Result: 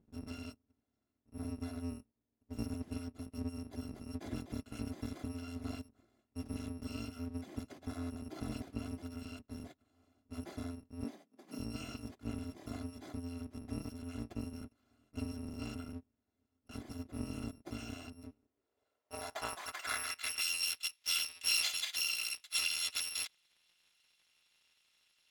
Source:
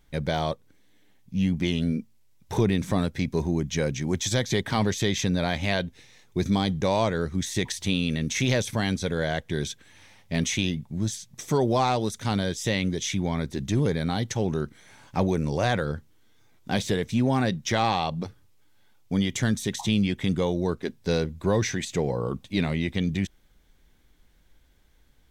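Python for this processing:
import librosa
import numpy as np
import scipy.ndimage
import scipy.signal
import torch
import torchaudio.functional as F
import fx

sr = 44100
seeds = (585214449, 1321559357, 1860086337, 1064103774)

y = fx.bit_reversed(x, sr, seeds[0], block=256)
y = fx.filter_sweep_bandpass(y, sr, from_hz=230.0, to_hz=3100.0, start_s=18.17, end_s=20.57, q=1.9)
y = fx.steep_highpass(y, sr, hz=150.0, slope=48, at=(11.04, 11.59))
y = F.gain(torch.from_numpy(y), 5.0).numpy()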